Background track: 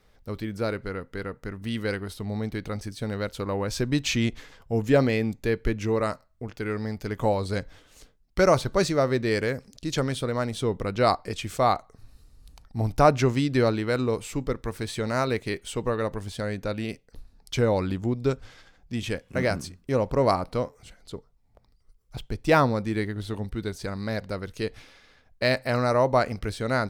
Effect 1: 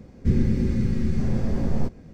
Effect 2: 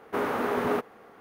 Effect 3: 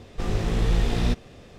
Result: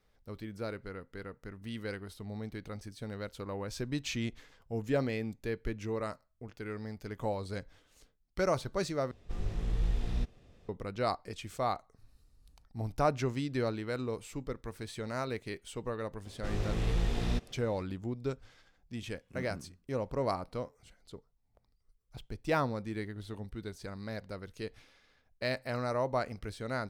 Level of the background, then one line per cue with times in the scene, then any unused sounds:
background track -10.5 dB
9.11 replace with 3 -16.5 dB + low shelf 96 Hz +10.5 dB
16.25 add 3 -8.5 dB
not used: 1, 2

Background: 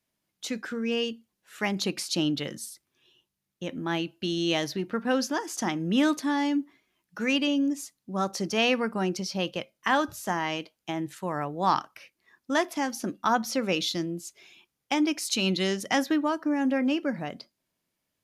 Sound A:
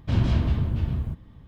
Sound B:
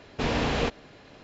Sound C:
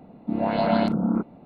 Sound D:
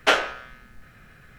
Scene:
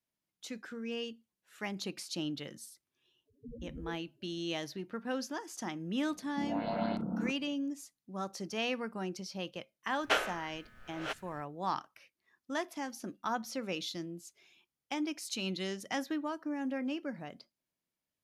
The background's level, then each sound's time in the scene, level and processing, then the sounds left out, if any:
background -10.5 dB
3.25 add B -10 dB, fades 0.05 s + loudest bins only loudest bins 2
6.09 add C -12.5 dB
10.03 add D -10.5 dB + reverse delay 0.585 s, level -10 dB
not used: A

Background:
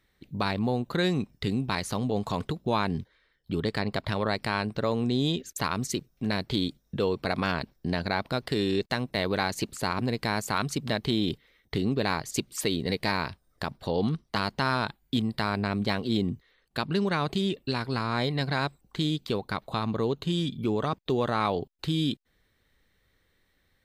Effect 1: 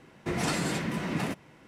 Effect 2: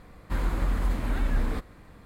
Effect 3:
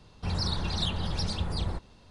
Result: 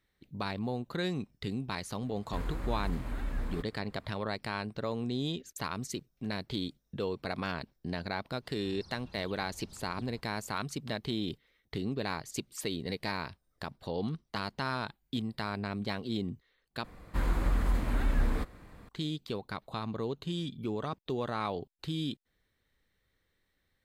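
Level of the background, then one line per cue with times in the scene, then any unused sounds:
background -7.5 dB
2.02 add 2 -9 dB
8.42 add 3 -8.5 dB, fades 0.05 s + compressor 5:1, threshold -44 dBFS
16.84 replace with 2 -2 dB
not used: 1

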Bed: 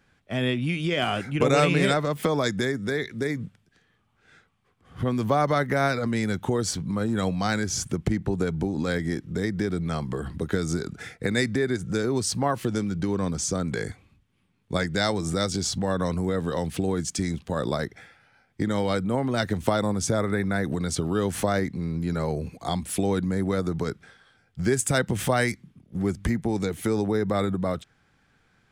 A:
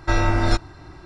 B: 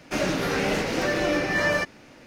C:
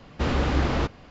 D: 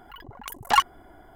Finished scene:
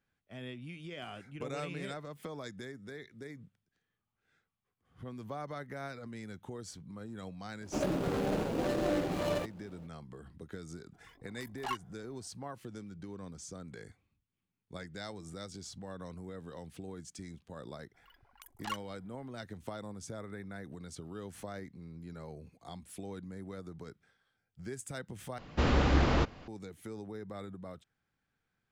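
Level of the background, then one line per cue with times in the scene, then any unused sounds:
bed -19 dB
7.61 add B -5.5 dB + median filter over 25 samples
10.93 add D -15 dB + chorus 2.9 Hz, delay 16 ms, depth 4.4 ms
17.94 add D -16.5 dB + bell 270 Hz -13 dB 2.7 oct
25.38 replace with C -3 dB
not used: A

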